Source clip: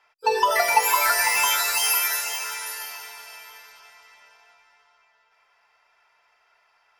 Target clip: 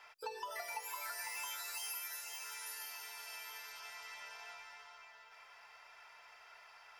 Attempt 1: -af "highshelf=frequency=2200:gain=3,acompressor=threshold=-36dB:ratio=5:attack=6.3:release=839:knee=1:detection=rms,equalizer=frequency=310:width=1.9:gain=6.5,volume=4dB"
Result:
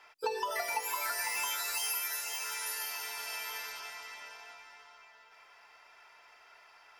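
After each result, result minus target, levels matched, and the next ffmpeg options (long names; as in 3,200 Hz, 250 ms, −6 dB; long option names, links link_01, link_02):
downward compressor: peak gain reduction −9 dB; 250 Hz band +5.0 dB
-af "highshelf=frequency=2200:gain=3,acompressor=threshold=-47dB:ratio=5:attack=6.3:release=839:knee=1:detection=rms,equalizer=frequency=310:width=1.9:gain=6.5,volume=4dB"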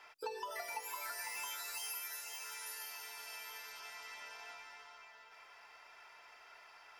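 250 Hz band +6.5 dB
-af "highshelf=frequency=2200:gain=3,acompressor=threshold=-47dB:ratio=5:attack=6.3:release=839:knee=1:detection=rms,equalizer=frequency=310:width=1.9:gain=-4,volume=4dB"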